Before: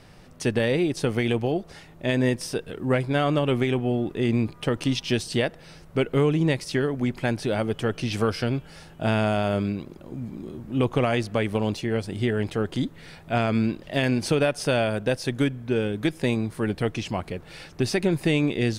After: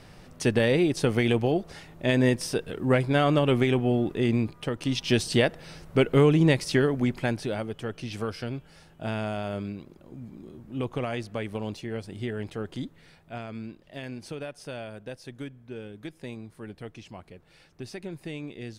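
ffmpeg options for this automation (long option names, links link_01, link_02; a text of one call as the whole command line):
ffmpeg -i in.wav -af "volume=9dB,afade=type=out:start_time=4.06:duration=0.72:silence=0.446684,afade=type=in:start_time=4.78:duration=0.42:silence=0.375837,afade=type=out:start_time=6.78:duration=0.91:silence=0.316228,afade=type=out:start_time=12.78:duration=0.66:silence=0.446684" out.wav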